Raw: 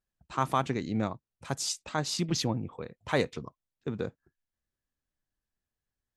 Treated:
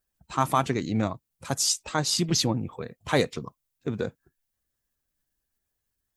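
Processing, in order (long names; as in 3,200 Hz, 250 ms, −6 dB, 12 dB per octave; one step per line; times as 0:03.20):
spectral magnitudes quantised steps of 15 dB
high-shelf EQ 7,400 Hz +11.5 dB
level +4.5 dB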